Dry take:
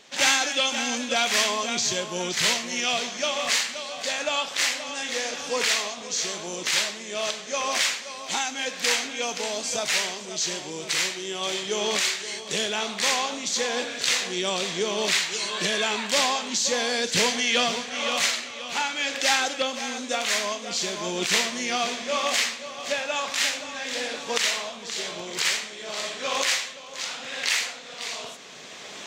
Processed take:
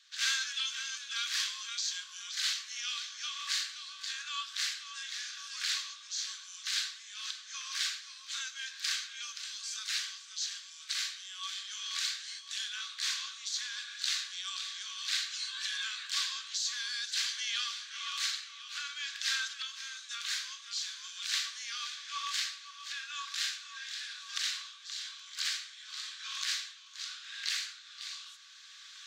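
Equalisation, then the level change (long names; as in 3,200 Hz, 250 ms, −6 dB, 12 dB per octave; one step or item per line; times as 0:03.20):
Chebyshev high-pass with heavy ripple 1,100 Hz, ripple 9 dB
spectral tilt +3.5 dB per octave
high-shelf EQ 3,700 Hz −10 dB
−7.5 dB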